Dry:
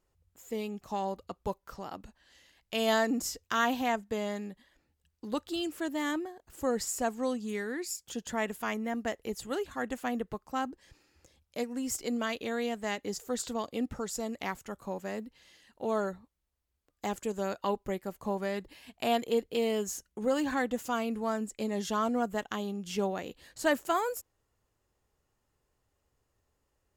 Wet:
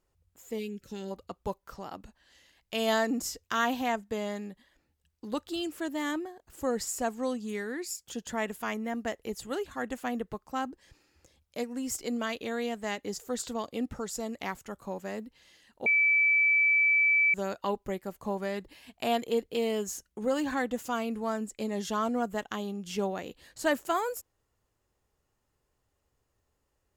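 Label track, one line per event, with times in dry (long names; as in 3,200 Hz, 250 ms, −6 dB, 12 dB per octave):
0.590000	1.110000	gain on a spectral selection 560–1,300 Hz −20 dB
15.860000	17.340000	beep over 2,310 Hz −20.5 dBFS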